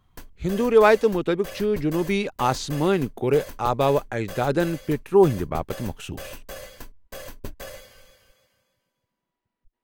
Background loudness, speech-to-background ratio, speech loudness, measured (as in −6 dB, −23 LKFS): −40.5 LKFS, 18.0 dB, −22.5 LKFS